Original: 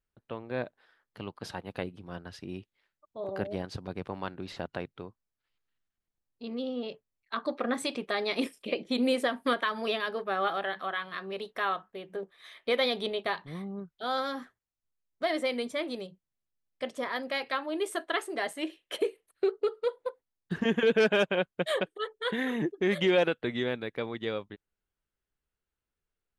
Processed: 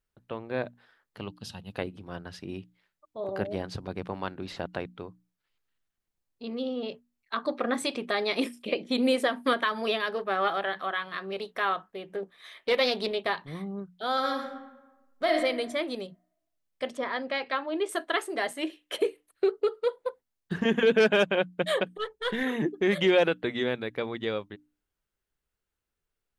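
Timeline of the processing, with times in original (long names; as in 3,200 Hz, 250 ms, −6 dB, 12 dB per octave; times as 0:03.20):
0:01.28–0:01.72: gain on a spectral selection 240–2,500 Hz −12 dB
0:10.02–0:13.41: highs frequency-modulated by the lows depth 0.15 ms
0:14.13–0:15.35: thrown reverb, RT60 1.1 s, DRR 3 dB
0:16.97–0:17.89: high-frequency loss of the air 110 metres
0:21.97–0:22.43: gain on one half-wave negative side −3 dB
whole clip: mains-hum notches 60/120/180/240/300 Hz; level +2.5 dB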